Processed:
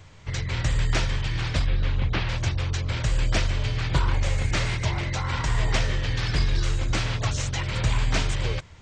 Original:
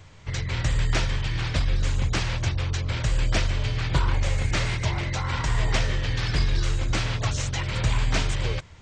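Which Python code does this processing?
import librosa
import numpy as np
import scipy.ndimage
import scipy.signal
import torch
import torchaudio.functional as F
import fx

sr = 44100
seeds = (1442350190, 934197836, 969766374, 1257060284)

y = fx.lowpass(x, sr, hz=4000.0, slope=24, at=(1.66, 2.29))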